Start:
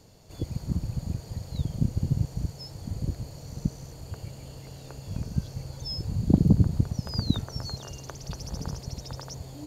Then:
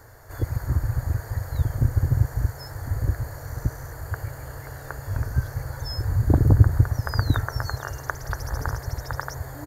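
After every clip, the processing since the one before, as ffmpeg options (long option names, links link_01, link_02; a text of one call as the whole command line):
ffmpeg -i in.wav -af "firequalizer=gain_entry='entry(120,0);entry(170,-20);entry(280,-7);entry(430,-3);entry(1700,14);entry(2600,-14);entry(13000,6)':delay=0.05:min_phase=1,volume=8dB" out.wav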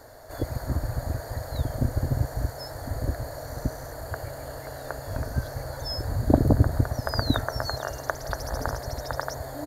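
ffmpeg -i in.wav -af "equalizer=frequency=100:width_type=o:width=0.67:gain=-5,equalizer=frequency=250:width_type=o:width=0.67:gain=8,equalizer=frequency=630:width_type=o:width=0.67:gain=12,equalizer=frequency=4000:width_type=o:width=0.67:gain=10,equalizer=frequency=10000:width_type=o:width=0.67:gain=5,volume=-3dB" out.wav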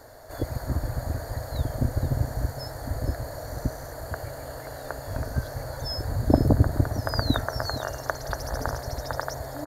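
ffmpeg -i in.wav -af "aecho=1:1:459:0.188" out.wav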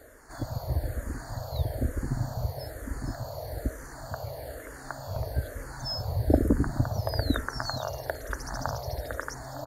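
ffmpeg -i in.wav -filter_complex "[0:a]asplit=2[link_01][link_02];[link_02]afreqshift=-1.1[link_03];[link_01][link_03]amix=inputs=2:normalize=1" out.wav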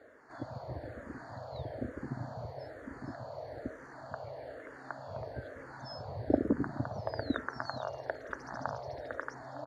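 ffmpeg -i in.wav -af "highpass=170,lowpass=2800,volume=-4dB" out.wav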